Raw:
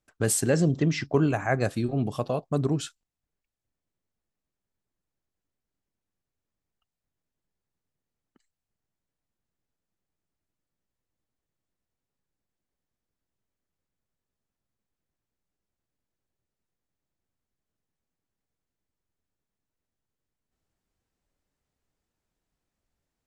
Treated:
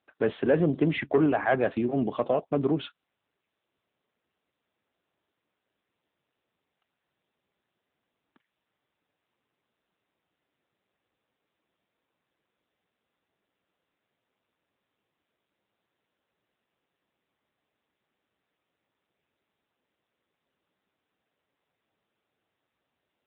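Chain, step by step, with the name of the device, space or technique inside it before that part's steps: telephone (BPF 260–3600 Hz; soft clip -19.5 dBFS, distortion -15 dB; gain +5.5 dB; AMR-NB 7.95 kbps 8000 Hz)

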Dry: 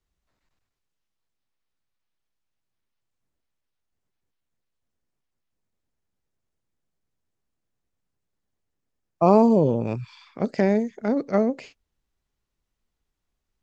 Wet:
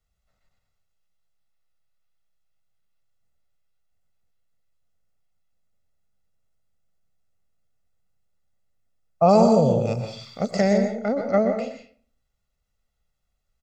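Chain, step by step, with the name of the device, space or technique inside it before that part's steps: 9.29–10.78 tone controls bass 0 dB, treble +15 dB; microphone above a desk (comb 1.5 ms, depth 70%; reverb RT60 0.45 s, pre-delay 0.117 s, DRR 5.5 dB); gain -1 dB

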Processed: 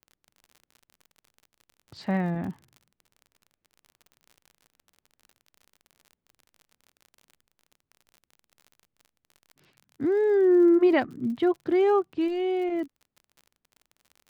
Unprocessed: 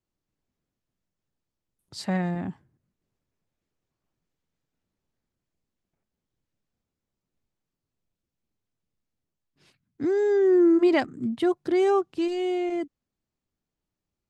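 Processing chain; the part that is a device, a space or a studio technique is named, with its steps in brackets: lo-fi chain (LPF 3100 Hz 12 dB/oct; wow and flutter; crackle 43/s -40 dBFS)

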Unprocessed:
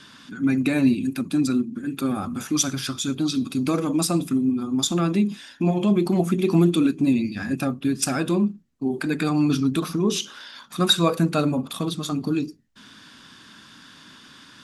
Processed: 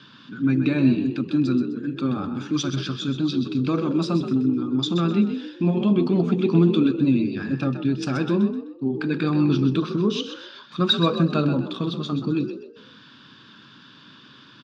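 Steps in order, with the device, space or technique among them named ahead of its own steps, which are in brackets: frequency-shifting delay pedal into a guitar cabinet (frequency-shifting echo 0.128 s, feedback 36%, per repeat +48 Hz, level -9.5 dB; speaker cabinet 98–4300 Hz, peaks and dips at 130 Hz +7 dB, 720 Hz -9 dB, 2000 Hz -8 dB)

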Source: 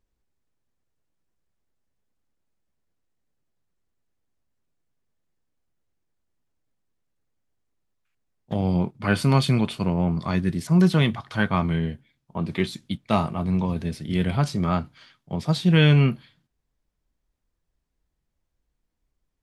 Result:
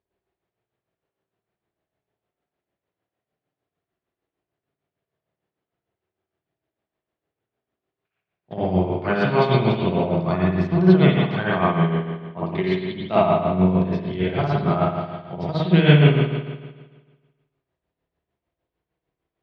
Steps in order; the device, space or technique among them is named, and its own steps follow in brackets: combo amplifier with spring reverb and tremolo (spring tank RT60 1.4 s, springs 54 ms, chirp 60 ms, DRR -7 dB; tremolo 6.6 Hz, depth 60%; speaker cabinet 110–4400 Hz, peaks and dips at 240 Hz -6 dB, 380 Hz +6 dB, 670 Hz +7 dB); gain -2 dB

